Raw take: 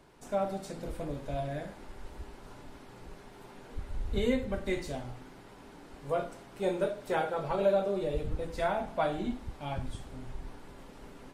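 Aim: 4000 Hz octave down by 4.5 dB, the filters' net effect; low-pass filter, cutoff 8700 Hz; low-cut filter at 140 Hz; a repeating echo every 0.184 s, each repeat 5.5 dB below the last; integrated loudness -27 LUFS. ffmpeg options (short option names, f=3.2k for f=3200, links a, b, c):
-af "highpass=140,lowpass=8.7k,equalizer=f=4k:t=o:g=-5.5,aecho=1:1:184|368|552|736|920|1104|1288:0.531|0.281|0.149|0.079|0.0419|0.0222|0.0118,volume=5.5dB"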